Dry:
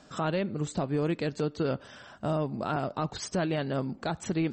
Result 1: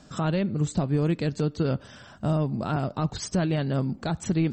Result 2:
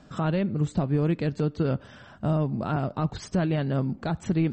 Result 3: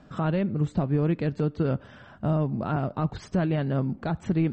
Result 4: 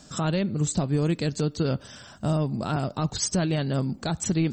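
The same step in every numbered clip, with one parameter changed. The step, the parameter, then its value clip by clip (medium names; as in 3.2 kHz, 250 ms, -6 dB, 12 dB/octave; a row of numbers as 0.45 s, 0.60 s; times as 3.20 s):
tone controls, treble: +4 dB, -6 dB, -15 dB, +14 dB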